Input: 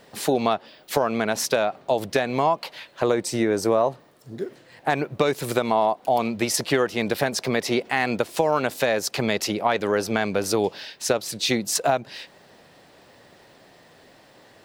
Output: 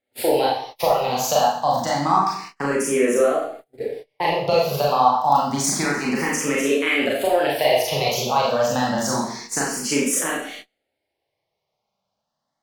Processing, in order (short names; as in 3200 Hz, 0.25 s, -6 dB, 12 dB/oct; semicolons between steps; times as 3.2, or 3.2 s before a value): low shelf 72 Hz +5 dB; Schroeder reverb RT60 0.71 s, combs from 33 ms, DRR -4.5 dB; varispeed +16%; gate -32 dBFS, range -30 dB; endless phaser +0.28 Hz